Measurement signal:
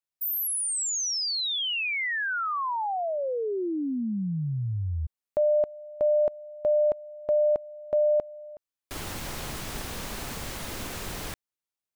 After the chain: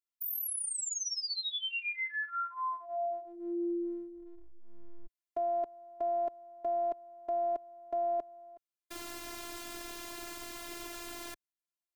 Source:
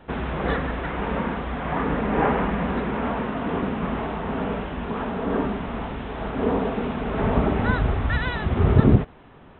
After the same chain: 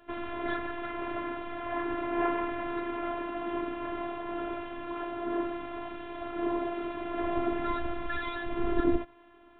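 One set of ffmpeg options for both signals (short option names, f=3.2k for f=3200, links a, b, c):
-af "highpass=77,afftfilt=real='hypot(re,im)*cos(PI*b)':imag='0':win_size=512:overlap=0.75,volume=-3.5dB"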